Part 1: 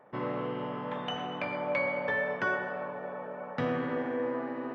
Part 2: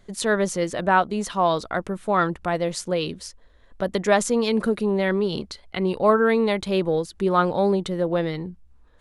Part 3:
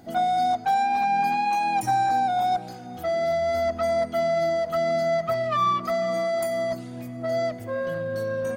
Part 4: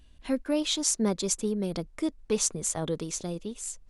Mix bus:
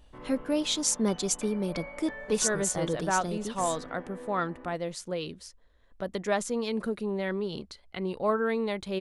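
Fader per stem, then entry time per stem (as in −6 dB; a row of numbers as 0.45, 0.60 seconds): −12.0 dB, −9.0 dB, muted, −0.5 dB; 0.00 s, 2.20 s, muted, 0.00 s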